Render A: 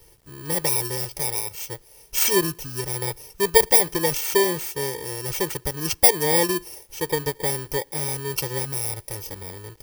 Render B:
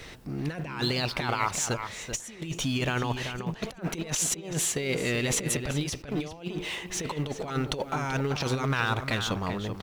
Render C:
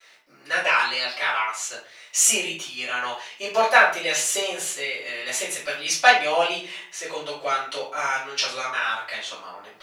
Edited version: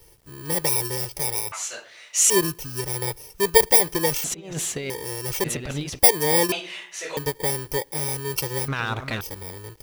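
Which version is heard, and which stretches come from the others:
A
0:01.52–0:02.30: punch in from C
0:04.24–0:04.90: punch in from B
0:05.44–0:05.99: punch in from B
0:06.52–0:07.17: punch in from C
0:08.68–0:09.21: punch in from B

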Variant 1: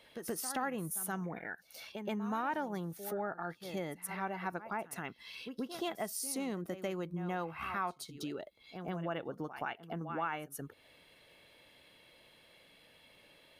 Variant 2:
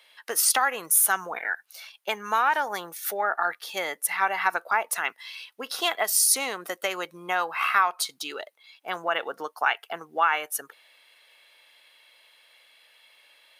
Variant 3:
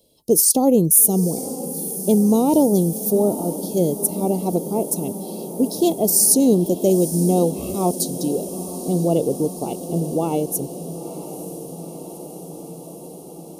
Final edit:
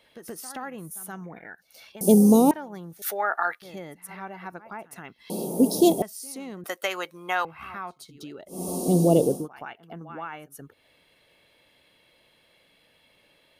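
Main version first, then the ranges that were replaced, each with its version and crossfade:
1
0:02.01–0:02.51: punch in from 3
0:03.02–0:03.62: punch in from 2
0:05.30–0:06.02: punch in from 3
0:06.64–0:07.45: punch in from 2
0:08.58–0:09.36: punch in from 3, crossfade 0.24 s

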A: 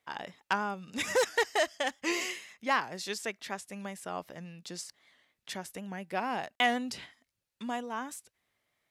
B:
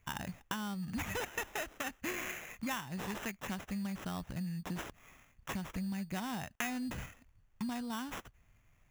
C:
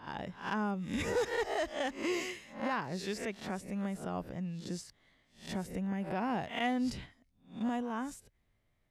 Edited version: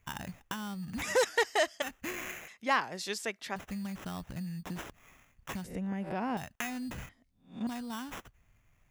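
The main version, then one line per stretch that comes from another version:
B
0:01.02–0:01.82: punch in from A
0:02.48–0:03.56: punch in from A
0:05.64–0:06.37: punch in from C
0:07.09–0:07.67: punch in from C

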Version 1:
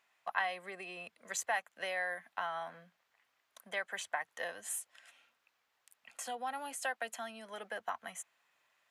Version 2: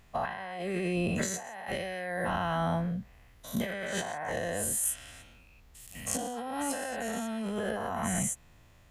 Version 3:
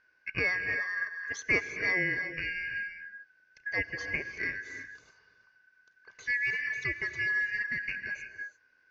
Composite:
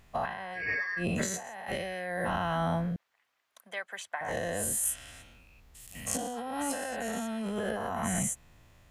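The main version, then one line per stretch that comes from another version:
2
0:00.58–0:01.01: punch in from 3, crossfade 0.10 s
0:02.96–0:04.21: punch in from 1

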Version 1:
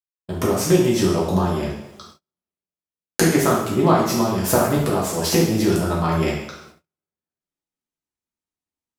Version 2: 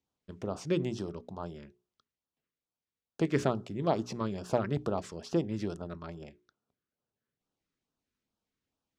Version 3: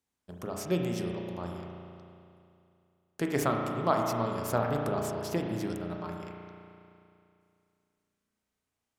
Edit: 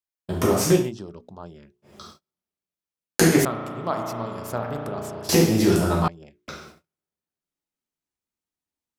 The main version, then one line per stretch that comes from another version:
1
0:00.80–0:01.94: punch in from 2, crossfade 0.24 s
0:03.45–0:05.29: punch in from 3
0:06.08–0:06.48: punch in from 2

